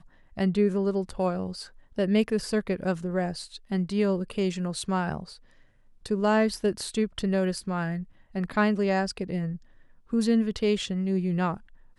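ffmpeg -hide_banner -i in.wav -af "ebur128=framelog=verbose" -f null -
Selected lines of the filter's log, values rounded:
Integrated loudness:
  I:         -27.5 LUFS
  Threshold: -38.1 LUFS
Loudness range:
  LRA:         2.0 LU
  Threshold: -48.2 LUFS
  LRA low:   -29.2 LUFS
  LRA high:  -27.1 LUFS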